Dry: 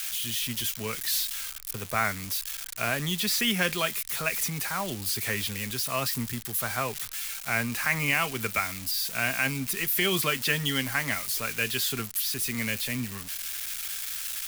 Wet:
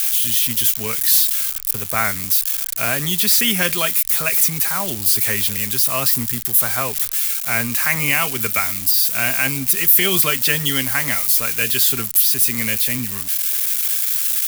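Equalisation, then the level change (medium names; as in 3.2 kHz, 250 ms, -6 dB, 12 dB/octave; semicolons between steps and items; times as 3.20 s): treble shelf 7.8 kHz +12 dB; +5.5 dB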